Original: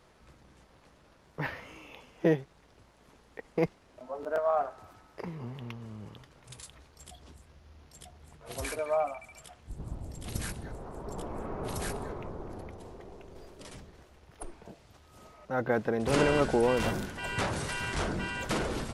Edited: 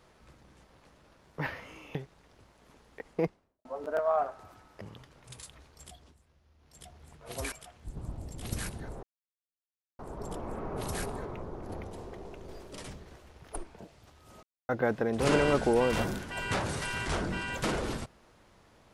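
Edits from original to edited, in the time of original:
0:01.95–0:02.34: remove
0:03.46–0:04.04: fade out and dull
0:05.20–0:06.01: remove
0:07.08–0:08.06: duck −10.5 dB, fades 0.27 s
0:08.72–0:09.35: remove
0:10.86: splice in silence 0.96 s
0:12.56–0:14.50: clip gain +3.5 dB
0:15.30–0:15.56: silence

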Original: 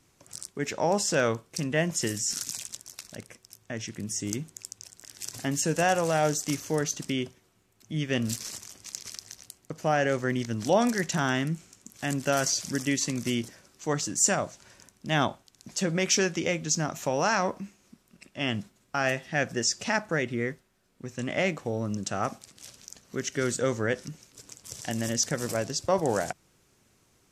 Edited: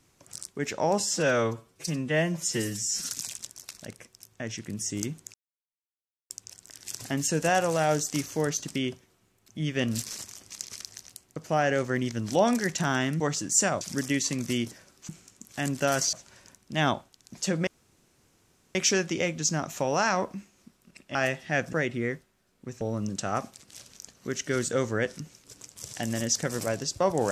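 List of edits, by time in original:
0:01.00–0:02.40: time-stretch 1.5×
0:04.64: splice in silence 0.96 s
0:11.54–0:12.58: swap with 0:13.86–0:14.47
0:16.01: splice in room tone 1.08 s
0:18.41–0:18.98: remove
0:19.56–0:20.10: remove
0:21.18–0:21.69: remove

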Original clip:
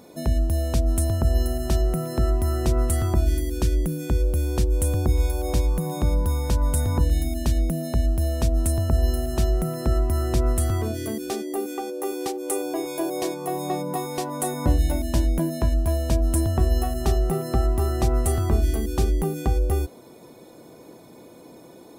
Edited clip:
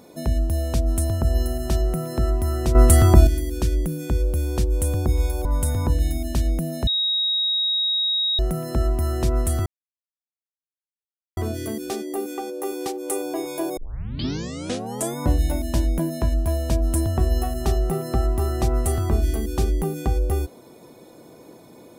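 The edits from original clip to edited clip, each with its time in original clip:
0:02.75–0:03.27: clip gain +9 dB
0:05.45–0:06.56: remove
0:07.98–0:09.50: beep over 3,790 Hz −19 dBFS
0:10.77: splice in silence 1.71 s
0:13.17: tape start 1.41 s

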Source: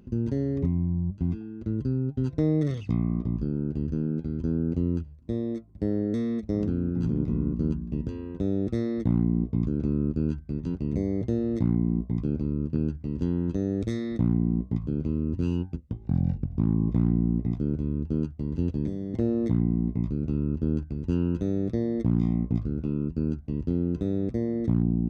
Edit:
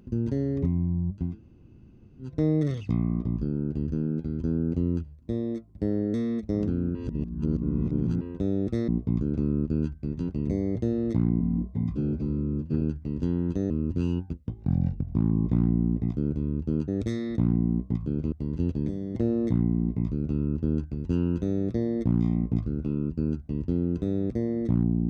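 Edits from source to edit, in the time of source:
0:01.30–0:02.30: fill with room tone, crossfade 0.24 s
0:06.95–0:08.21: reverse
0:08.88–0:09.34: remove
0:11.86–0:12.80: time-stretch 1.5×
0:13.69–0:15.13: move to 0:18.31

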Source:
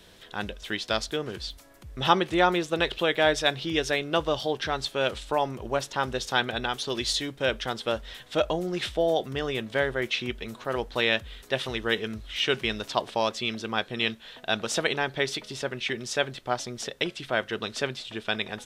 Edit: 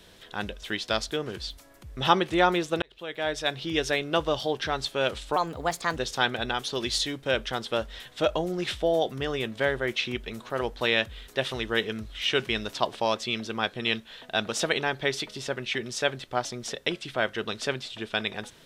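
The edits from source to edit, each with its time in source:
0:02.82–0:03.82: fade in
0:05.36–0:06.11: play speed 124%

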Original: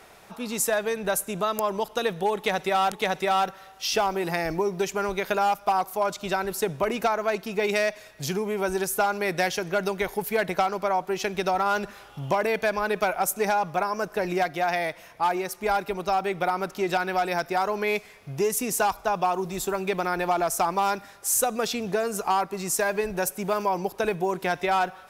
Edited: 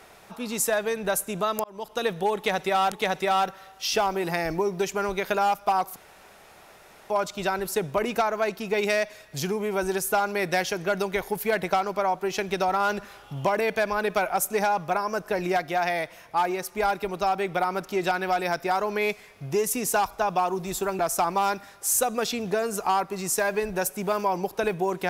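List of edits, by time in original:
0:01.64–0:02.05: fade in
0:05.96: splice in room tone 1.14 s
0:19.85–0:20.40: remove

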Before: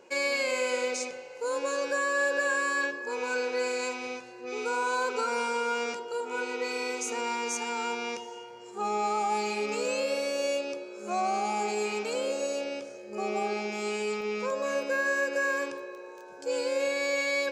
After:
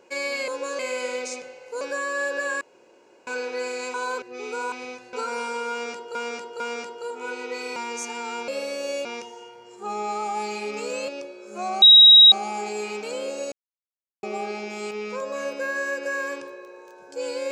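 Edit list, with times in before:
0:01.50–0:01.81: move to 0:00.48
0:02.61–0:03.27: fill with room tone
0:03.94–0:04.35: swap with 0:04.85–0:05.13
0:05.70–0:06.15: repeat, 3 plays
0:06.86–0:07.28: remove
0:10.03–0:10.60: move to 0:08.00
0:11.34: insert tone 3,820 Hz −7 dBFS 0.50 s
0:12.54–0:13.25: silence
0:13.93–0:14.21: remove

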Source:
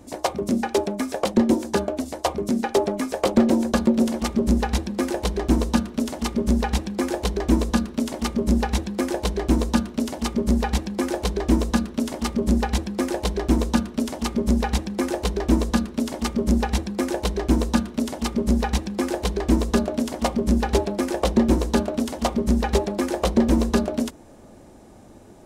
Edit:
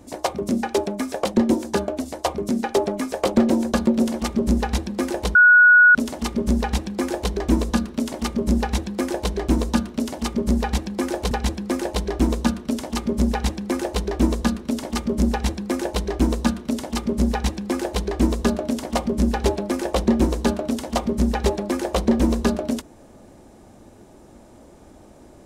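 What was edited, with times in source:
0:05.35–0:05.95: beep over 1,460 Hz −8 dBFS
0:11.31–0:12.60: remove

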